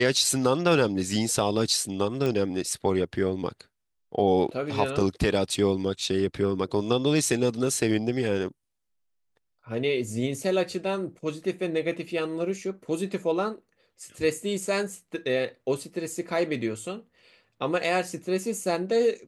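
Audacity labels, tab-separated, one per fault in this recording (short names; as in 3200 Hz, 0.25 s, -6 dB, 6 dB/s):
2.260000	2.260000	pop -16 dBFS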